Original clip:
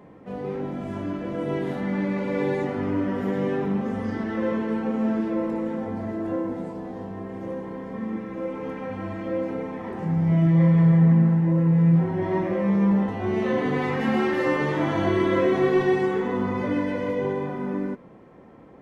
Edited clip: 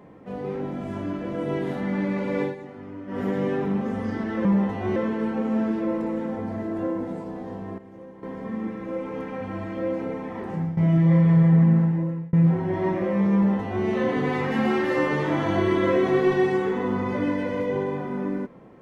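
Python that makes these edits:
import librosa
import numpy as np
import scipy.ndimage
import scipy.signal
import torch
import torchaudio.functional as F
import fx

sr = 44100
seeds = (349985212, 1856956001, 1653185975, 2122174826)

y = fx.edit(x, sr, fx.fade_down_up(start_s=2.42, length_s=0.78, db=-13.0, fade_s=0.13),
    fx.clip_gain(start_s=7.27, length_s=0.45, db=-11.0),
    fx.fade_out_to(start_s=9.96, length_s=0.3, curve='qsin', floor_db=-14.0),
    fx.fade_out_span(start_s=11.31, length_s=0.51),
    fx.duplicate(start_s=12.84, length_s=0.51, to_s=4.45), tone=tone)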